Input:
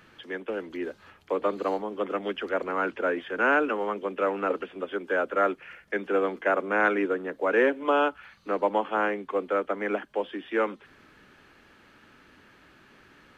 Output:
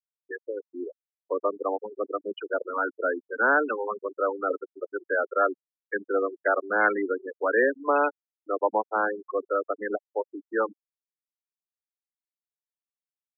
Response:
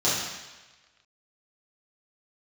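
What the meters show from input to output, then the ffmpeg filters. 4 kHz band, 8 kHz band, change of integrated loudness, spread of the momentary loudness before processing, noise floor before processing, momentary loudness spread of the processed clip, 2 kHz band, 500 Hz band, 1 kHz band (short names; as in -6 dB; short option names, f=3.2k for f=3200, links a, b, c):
under -10 dB, n/a, 0.0 dB, 10 LU, -57 dBFS, 13 LU, +1.0 dB, -0.5 dB, +0.5 dB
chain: -af "afftfilt=real='re*gte(hypot(re,im),0.112)':imag='im*gte(hypot(re,im),0.112)':win_size=1024:overlap=0.75,aemphasis=mode=production:type=bsi,volume=1.5dB"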